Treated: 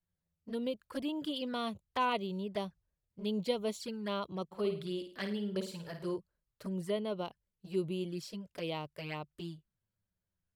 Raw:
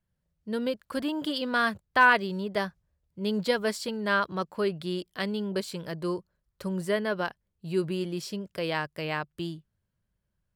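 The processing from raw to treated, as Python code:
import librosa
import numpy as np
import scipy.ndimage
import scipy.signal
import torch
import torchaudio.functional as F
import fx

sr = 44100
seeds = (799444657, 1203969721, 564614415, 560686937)

y = fx.env_flanger(x, sr, rest_ms=11.5, full_db=-26.5)
y = fx.room_flutter(y, sr, wall_m=9.1, rt60_s=0.42, at=(4.51, 6.15), fade=0.02)
y = y * librosa.db_to_amplitude(-5.5)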